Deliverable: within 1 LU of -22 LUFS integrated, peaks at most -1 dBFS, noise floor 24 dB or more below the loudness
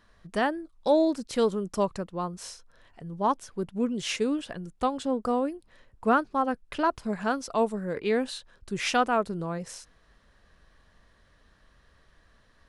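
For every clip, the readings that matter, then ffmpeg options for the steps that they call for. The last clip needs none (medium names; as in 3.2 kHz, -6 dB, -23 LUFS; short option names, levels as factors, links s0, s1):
loudness -28.5 LUFS; peak level -12.5 dBFS; loudness target -22.0 LUFS
-> -af "volume=2.11"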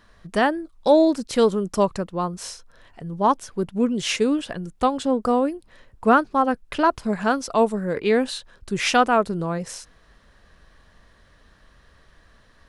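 loudness -22.0 LUFS; peak level -6.0 dBFS; noise floor -56 dBFS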